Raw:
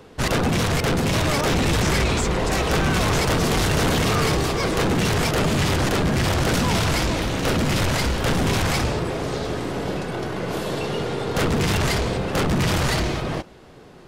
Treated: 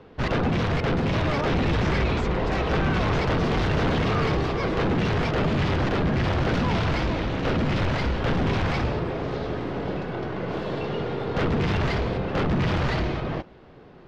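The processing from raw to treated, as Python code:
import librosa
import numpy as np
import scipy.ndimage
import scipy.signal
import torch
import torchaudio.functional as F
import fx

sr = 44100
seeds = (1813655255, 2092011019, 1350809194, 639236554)

y = fx.air_absorb(x, sr, metres=240.0)
y = y * 10.0 ** (-2.0 / 20.0)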